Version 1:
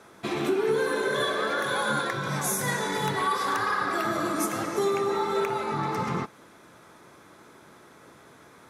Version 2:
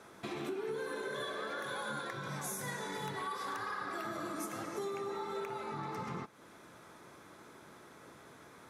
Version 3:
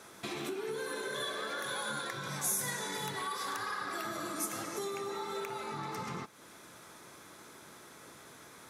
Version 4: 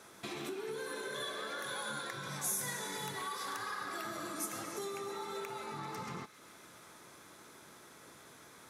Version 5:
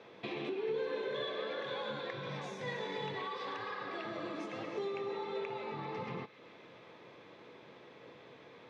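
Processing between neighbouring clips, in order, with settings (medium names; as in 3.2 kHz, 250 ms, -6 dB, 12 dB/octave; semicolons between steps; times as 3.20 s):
compression 2:1, threshold -41 dBFS, peak gain reduction 11 dB; trim -3.5 dB
treble shelf 2.9 kHz +10.5 dB
feedback echo behind a high-pass 133 ms, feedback 83%, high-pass 1.6 kHz, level -17 dB; trim -3 dB
cabinet simulation 110–3600 Hz, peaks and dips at 120 Hz +4 dB, 490 Hz +9 dB, 1.4 kHz -10 dB, 2.6 kHz +3 dB; trim +1.5 dB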